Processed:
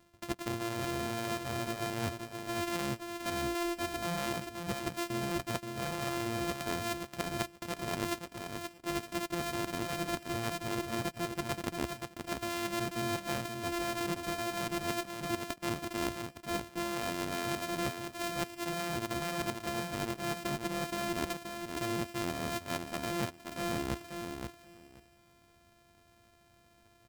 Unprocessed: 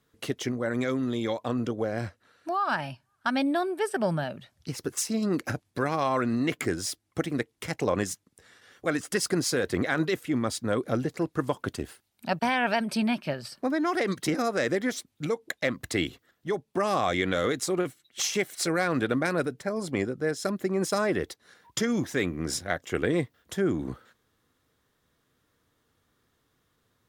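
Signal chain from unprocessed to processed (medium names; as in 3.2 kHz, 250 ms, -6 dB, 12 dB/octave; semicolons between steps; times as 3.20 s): sorted samples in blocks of 128 samples; reverse; compression 16:1, threshold -39 dBFS, peak gain reduction 19 dB; reverse; feedback delay 527 ms, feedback 16%, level -6 dB; trim +7.5 dB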